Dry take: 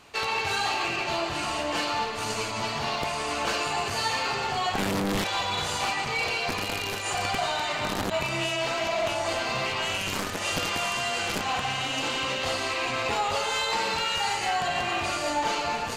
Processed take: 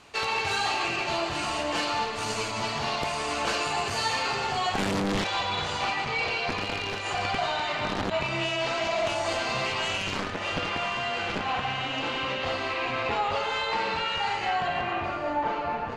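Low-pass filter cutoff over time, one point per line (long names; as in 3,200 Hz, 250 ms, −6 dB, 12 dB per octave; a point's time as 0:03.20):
0:04.69 10,000 Hz
0:05.62 4,500 Hz
0:08.35 4,500 Hz
0:09.15 8,500 Hz
0:09.82 8,500 Hz
0:10.36 3,200 Hz
0:14.57 3,200 Hz
0:15.17 1,600 Hz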